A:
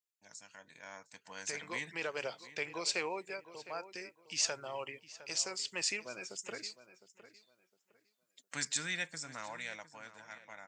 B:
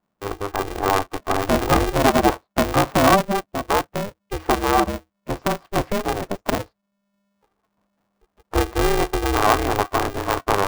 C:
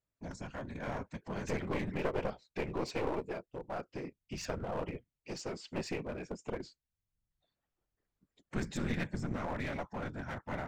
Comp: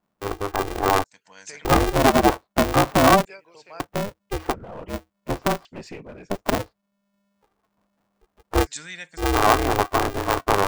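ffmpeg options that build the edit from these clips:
ffmpeg -i take0.wav -i take1.wav -i take2.wav -filter_complex "[0:a]asplit=3[link_01][link_02][link_03];[2:a]asplit=2[link_04][link_05];[1:a]asplit=6[link_06][link_07][link_08][link_09][link_10][link_11];[link_06]atrim=end=1.042[link_12];[link_01]atrim=start=1.038:end=1.652[link_13];[link_07]atrim=start=1.648:end=3.252[link_14];[link_02]atrim=start=3.248:end=3.802[link_15];[link_08]atrim=start=3.798:end=4.54[link_16];[link_04]atrim=start=4.48:end=4.94[link_17];[link_09]atrim=start=4.88:end=5.652[link_18];[link_05]atrim=start=5.648:end=6.302[link_19];[link_10]atrim=start=6.298:end=8.67[link_20];[link_03]atrim=start=8.63:end=9.21[link_21];[link_11]atrim=start=9.17[link_22];[link_12][link_13]acrossfade=duration=0.004:curve1=hsin:curve2=hsin[link_23];[link_23][link_14]acrossfade=duration=0.004:curve1=hsin:curve2=hsin[link_24];[link_24][link_15]acrossfade=duration=0.004:curve1=hsin:curve2=hsin[link_25];[link_25][link_16]acrossfade=duration=0.004:curve1=hsin:curve2=hsin[link_26];[link_26][link_17]acrossfade=duration=0.06:curve1=tri:curve2=tri[link_27];[link_27][link_18]acrossfade=duration=0.06:curve1=tri:curve2=tri[link_28];[link_28][link_19]acrossfade=duration=0.004:curve1=hsin:curve2=hsin[link_29];[link_29][link_20]acrossfade=duration=0.004:curve1=hsin:curve2=hsin[link_30];[link_30][link_21]acrossfade=duration=0.04:curve1=tri:curve2=tri[link_31];[link_31][link_22]acrossfade=duration=0.04:curve1=tri:curve2=tri" out.wav

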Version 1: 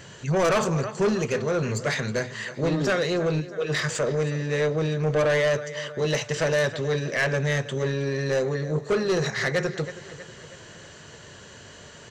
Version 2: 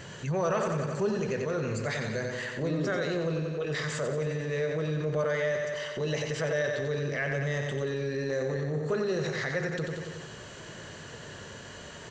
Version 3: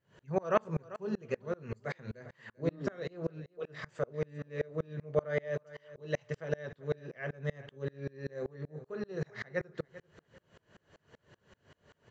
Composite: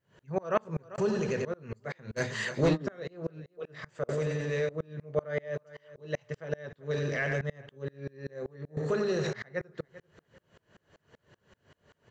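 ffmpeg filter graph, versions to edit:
ffmpeg -i take0.wav -i take1.wav -i take2.wav -filter_complex "[1:a]asplit=4[link_01][link_02][link_03][link_04];[2:a]asplit=6[link_05][link_06][link_07][link_08][link_09][link_10];[link_05]atrim=end=0.982[link_11];[link_01]atrim=start=0.978:end=1.452[link_12];[link_06]atrim=start=1.448:end=2.22[link_13];[0:a]atrim=start=2.16:end=2.78[link_14];[link_07]atrim=start=2.72:end=4.092[link_15];[link_02]atrim=start=4.088:end=4.692[link_16];[link_08]atrim=start=4.688:end=6.912[link_17];[link_03]atrim=start=6.908:end=7.412[link_18];[link_09]atrim=start=7.408:end=8.772[link_19];[link_04]atrim=start=8.768:end=9.332[link_20];[link_10]atrim=start=9.328[link_21];[link_11][link_12]acrossfade=duration=0.004:curve1=hsin:curve2=hsin[link_22];[link_22][link_13]acrossfade=duration=0.004:curve1=hsin:curve2=hsin[link_23];[link_23][link_14]acrossfade=duration=0.06:curve1=tri:curve2=tri[link_24];[link_24][link_15]acrossfade=duration=0.06:curve1=tri:curve2=tri[link_25];[link_25][link_16]acrossfade=duration=0.004:curve1=hsin:curve2=hsin[link_26];[link_26][link_17]acrossfade=duration=0.004:curve1=hsin:curve2=hsin[link_27];[link_27][link_18]acrossfade=duration=0.004:curve1=hsin:curve2=hsin[link_28];[link_28][link_19]acrossfade=duration=0.004:curve1=hsin:curve2=hsin[link_29];[link_29][link_20]acrossfade=duration=0.004:curve1=hsin:curve2=hsin[link_30];[link_30][link_21]acrossfade=duration=0.004:curve1=hsin:curve2=hsin" out.wav

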